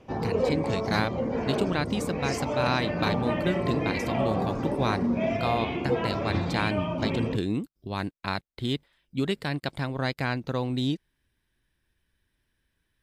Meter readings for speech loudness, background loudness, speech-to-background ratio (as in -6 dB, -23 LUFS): -30.5 LUFS, -29.0 LUFS, -1.5 dB